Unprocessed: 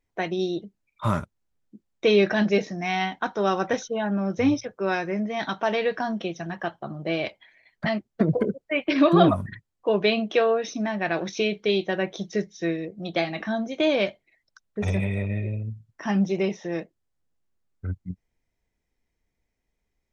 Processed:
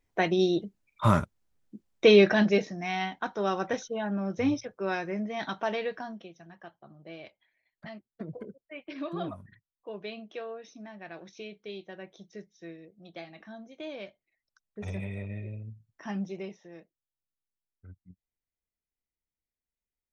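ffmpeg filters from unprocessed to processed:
-af "volume=10dB,afade=t=out:st=2.07:d=0.68:silence=0.421697,afade=t=out:st=5.64:d=0.65:silence=0.237137,afade=t=in:st=14.07:d=1:silence=0.398107,afade=t=out:st=16.07:d=0.63:silence=0.354813"

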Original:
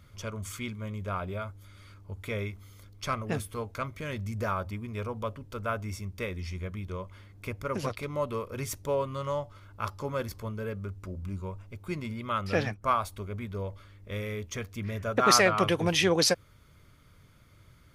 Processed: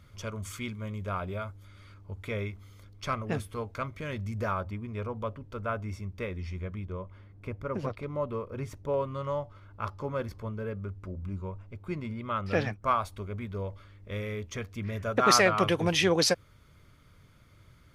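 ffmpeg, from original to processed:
-af "asetnsamples=n=441:p=0,asendcmd='1.57 lowpass f 4400;4.61 lowpass f 2200;6.84 lowpass f 1100;8.94 lowpass f 2000;12.51 lowpass f 4600;14.93 lowpass f 8600',lowpass=f=9.4k:p=1"

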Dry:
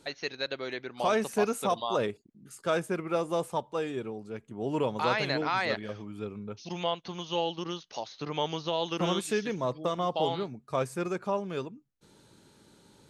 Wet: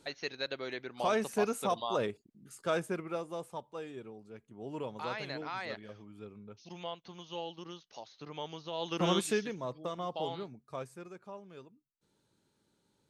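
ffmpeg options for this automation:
-af "volume=8dB,afade=t=out:st=2.87:d=0.4:silence=0.446684,afade=t=in:st=8.69:d=0.51:silence=0.266073,afade=t=out:st=9.2:d=0.34:silence=0.354813,afade=t=out:st=10.5:d=0.56:silence=0.375837"

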